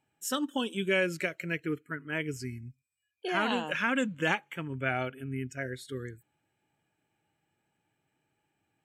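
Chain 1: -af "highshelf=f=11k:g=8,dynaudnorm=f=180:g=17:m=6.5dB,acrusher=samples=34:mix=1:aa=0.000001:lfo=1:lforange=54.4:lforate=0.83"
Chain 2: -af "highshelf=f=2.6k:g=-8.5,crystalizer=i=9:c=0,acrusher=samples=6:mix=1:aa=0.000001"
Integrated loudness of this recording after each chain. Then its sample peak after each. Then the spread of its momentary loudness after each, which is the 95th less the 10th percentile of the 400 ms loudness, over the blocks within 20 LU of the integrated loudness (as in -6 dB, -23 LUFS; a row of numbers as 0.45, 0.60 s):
-27.5, -27.5 LUFS; -8.0, -9.0 dBFS; 11, 13 LU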